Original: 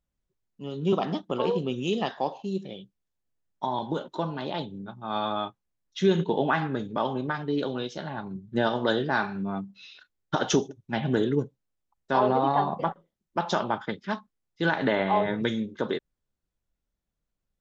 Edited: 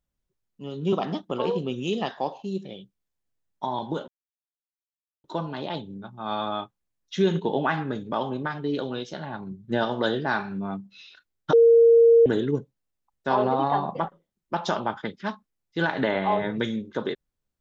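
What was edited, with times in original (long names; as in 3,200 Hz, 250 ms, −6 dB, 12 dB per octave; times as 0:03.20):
0:04.08: splice in silence 1.16 s
0:10.37–0:11.10: beep over 463 Hz −11.5 dBFS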